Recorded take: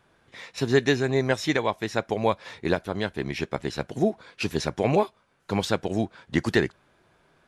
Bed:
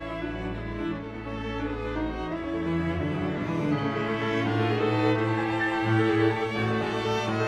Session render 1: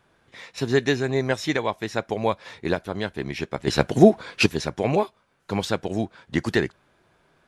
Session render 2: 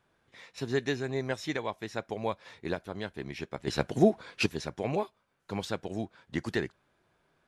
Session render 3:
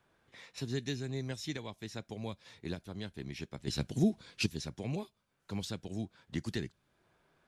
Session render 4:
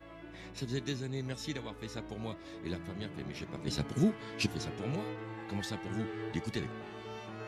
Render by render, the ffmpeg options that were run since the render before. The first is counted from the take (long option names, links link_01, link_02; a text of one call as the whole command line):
ffmpeg -i in.wav -filter_complex "[0:a]asplit=3[link_01][link_02][link_03];[link_01]atrim=end=3.672[link_04];[link_02]atrim=start=3.668:end=4.462,asetpts=PTS-STARTPTS,volume=10dB[link_05];[link_03]atrim=start=4.458[link_06];[link_04][link_05]acrossfade=duration=0.004:curve1=hsin:curve2=hsin[link_07];[link_07][link_06]acrossfade=duration=0.004:curve1=hsin:curve2=hsin" out.wav
ffmpeg -i in.wav -af "volume=-9dB" out.wav
ffmpeg -i in.wav -filter_complex "[0:a]acrossover=split=270|3000[link_01][link_02][link_03];[link_02]acompressor=threshold=-56dB:ratio=2[link_04];[link_01][link_04][link_03]amix=inputs=3:normalize=0" out.wav
ffmpeg -i in.wav -i bed.wav -filter_complex "[1:a]volume=-17.5dB[link_01];[0:a][link_01]amix=inputs=2:normalize=0" out.wav